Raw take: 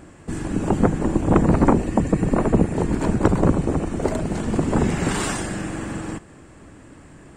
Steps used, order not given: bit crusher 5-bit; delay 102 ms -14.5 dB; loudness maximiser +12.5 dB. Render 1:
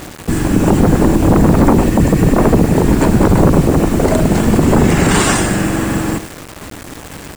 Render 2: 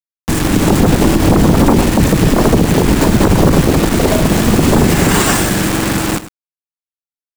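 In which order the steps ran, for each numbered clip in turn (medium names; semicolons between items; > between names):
delay > loudness maximiser > bit crusher; bit crusher > delay > loudness maximiser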